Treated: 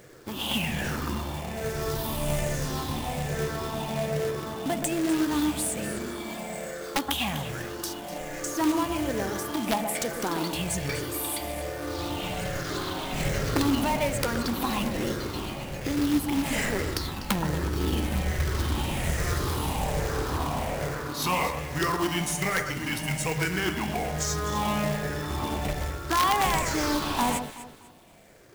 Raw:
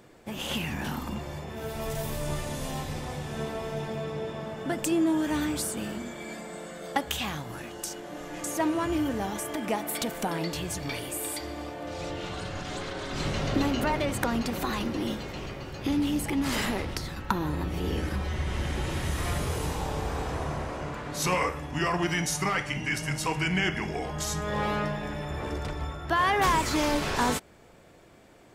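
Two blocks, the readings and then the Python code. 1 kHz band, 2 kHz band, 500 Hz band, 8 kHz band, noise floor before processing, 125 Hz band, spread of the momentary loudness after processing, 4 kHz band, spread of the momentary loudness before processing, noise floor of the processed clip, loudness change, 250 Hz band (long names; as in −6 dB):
+1.5 dB, +0.5 dB, +1.5 dB, +3.0 dB, −42 dBFS, +2.0 dB, 8 LU, +2.5 dB, 10 LU, −38 dBFS, +2.0 dB, +1.5 dB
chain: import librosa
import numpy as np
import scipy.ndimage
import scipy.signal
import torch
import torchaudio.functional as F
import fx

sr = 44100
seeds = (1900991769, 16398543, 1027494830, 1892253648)

p1 = fx.spec_ripple(x, sr, per_octave=0.53, drift_hz=-1.2, depth_db=10)
p2 = fx.rider(p1, sr, range_db=4, speed_s=0.5)
p3 = p1 + F.gain(torch.from_numpy(p2), 0.0).numpy()
p4 = fx.quant_companded(p3, sr, bits=4)
p5 = fx.echo_alternate(p4, sr, ms=124, hz=1600.0, feedback_pct=52, wet_db=-7.0)
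p6 = (np.mod(10.0 ** (8.0 / 20.0) * p5 + 1.0, 2.0) - 1.0) / 10.0 ** (8.0 / 20.0)
y = F.gain(torch.from_numpy(p6), -6.5).numpy()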